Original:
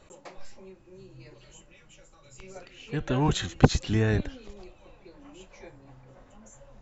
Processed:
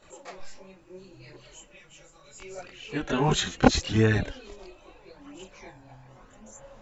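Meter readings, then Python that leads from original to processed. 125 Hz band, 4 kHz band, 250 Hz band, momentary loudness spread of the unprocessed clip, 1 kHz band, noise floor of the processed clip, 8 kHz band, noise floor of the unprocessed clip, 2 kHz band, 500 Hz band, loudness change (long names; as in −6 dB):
−1.5 dB, +4.5 dB, +1.5 dB, 14 LU, +3.5 dB, −55 dBFS, can't be measured, −57 dBFS, +4.0 dB, +2.5 dB, +1.5 dB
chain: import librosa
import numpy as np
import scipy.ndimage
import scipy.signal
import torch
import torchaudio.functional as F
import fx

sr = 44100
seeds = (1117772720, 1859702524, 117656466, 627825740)

y = fx.low_shelf(x, sr, hz=220.0, db=-8.5)
y = fx.chorus_voices(y, sr, voices=2, hz=0.37, base_ms=24, depth_ms=3.5, mix_pct=65)
y = y * librosa.db_to_amplitude(7.0)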